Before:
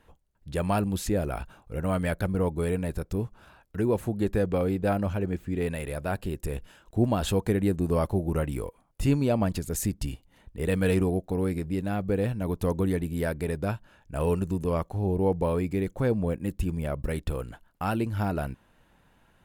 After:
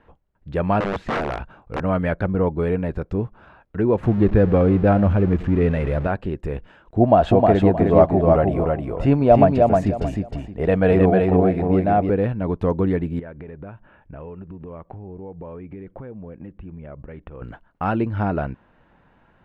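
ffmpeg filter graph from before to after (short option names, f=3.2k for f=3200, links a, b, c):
-filter_complex "[0:a]asettb=1/sr,asplit=3[a][b][c];[a]atrim=end=0.804[d];[b]atrim=start=0.8:end=1.82,asetpts=PTS-STARTPTS,afade=t=in:d=0.004:c=qsin,afade=t=out:st=1.016:d=0.004:c=qsin,acrossover=split=3100[e][f];[f]acompressor=threshold=-42dB:ratio=4:attack=1:release=60[g];[e][g]amix=inputs=2:normalize=0,aeval=exprs='(mod(15*val(0)+1,2)-1)/15':c=same[h];[c]atrim=start=1.816[i];[d][h]acrossfade=d=0.004:c1=hsin:c2=qsin[j];[j][i]acrossfade=d=0.004:c1=qsin:c2=hsin,asettb=1/sr,asplit=3[k][l][m];[k]atrim=end=4.034[n];[l]atrim=start=4.03:end=6.07,asetpts=PTS-STARTPTS,afade=t=in:d=0.004:c=qsin,afade=t=out:st=2.036:d=0.004:c=qsin,aeval=exprs='val(0)+0.5*0.0158*sgn(val(0))':c=same,lowshelf=f=170:g=9,aecho=1:1:104:0.126,atrim=end_sample=89964[o];[m]atrim=start=6.066[p];[n][o]acrossfade=d=0.004:c1=hsin:c2=qsin[q];[q][p]acrossfade=d=0.004:c1=qsin:c2=hsin,asettb=1/sr,asplit=3[r][s][t];[r]atrim=end=7.004[u];[s]atrim=start=7:end=12.1,asetpts=PTS-STARTPTS,afade=t=in:d=0.004:c=qsin,afade=t=out:st=5.096:d=0.004:c=qsin,equalizer=f=680:w=3.3:g=13,aecho=1:1:311|622|933:0.708|0.17|0.0408,atrim=end_sample=224910[v];[t]atrim=start=12.096[w];[u][v]acrossfade=d=0.004:c1=hsin:c2=qsin[x];[x][w]acrossfade=d=0.004:c1=qsin:c2=hsin,asettb=1/sr,asplit=3[y][z][aa];[y]atrim=end=13.194[ab];[z]atrim=start=13.19:end=17.42,asetpts=PTS-STARTPTS,afade=t=in:d=0.004:c=qsin,afade=t=out:st=4.226:d=0.004:c=qsin,acompressor=threshold=-38dB:ratio=12:attack=3.2:release=140:knee=1:detection=peak,lowpass=f=3.1k:w=0.5412,lowpass=f=3.1k:w=1.3066[ac];[aa]atrim=start=17.416[ad];[ab][ac]acrossfade=d=0.004:c1=hsin:c2=qsin[ae];[ae][ad]acrossfade=d=0.004:c1=qsin:c2=hsin,lowpass=2k,lowshelf=f=100:g=-5,volume=7dB"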